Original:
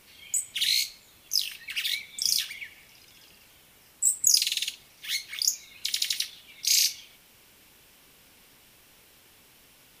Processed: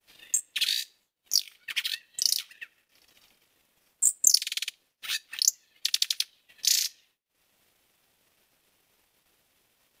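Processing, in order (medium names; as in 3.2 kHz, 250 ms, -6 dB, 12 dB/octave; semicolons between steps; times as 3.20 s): ring modulator 400 Hz; transient shaper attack +9 dB, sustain -10 dB; expander -53 dBFS; trim -3 dB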